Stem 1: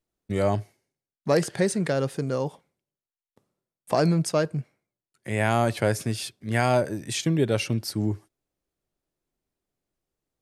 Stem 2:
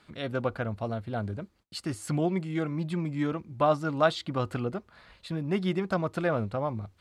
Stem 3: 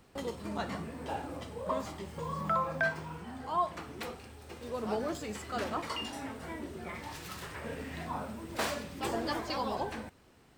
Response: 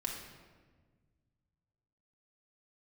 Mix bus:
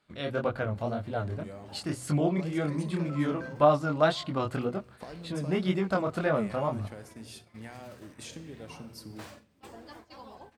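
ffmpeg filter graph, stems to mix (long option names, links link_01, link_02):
-filter_complex "[0:a]acompressor=threshold=-29dB:ratio=10,adelay=1100,volume=-15.5dB,asplit=2[link_01][link_02];[link_02]volume=-3dB[link_03];[1:a]equalizer=frequency=600:width=7.9:gain=3.5,flanger=delay=20:depth=7.7:speed=1.9,volume=3dB,asplit=3[link_04][link_05][link_06];[link_05]volume=-23.5dB[link_07];[2:a]adelay=600,volume=-16dB,asplit=2[link_08][link_09];[link_09]volume=-10.5dB[link_10];[link_06]apad=whole_len=492914[link_11];[link_08][link_11]sidechaincompress=threshold=-34dB:ratio=8:attack=16:release=227[link_12];[3:a]atrim=start_sample=2205[link_13];[link_03][link_07][link_10]amix=inputs=3:normalize=0[link_14];[link_14][link_13]afir=irnorm=-1:irlink=0[link_15];[link_01][link_04][link_12][link_15]amix=inputs=4:normalize=0,bandreject=frequency=62.31:width_type=h:width=4,bandreject=frequency=124.62:width_type=h:width=4,agate=range=-12dB:threshold=-49dB:ratio=16:detection=peak"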